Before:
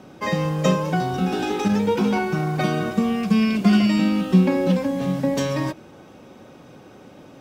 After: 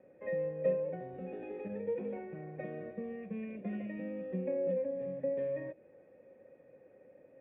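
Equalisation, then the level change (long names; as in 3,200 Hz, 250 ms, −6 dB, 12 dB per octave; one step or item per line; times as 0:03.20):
dynamic equaliser 1,500 Hz, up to −6 dB, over −39 dBFS, Q 0.94
formant resonators in series e
high-frequency loss of the air 190 metres
−4.0 dB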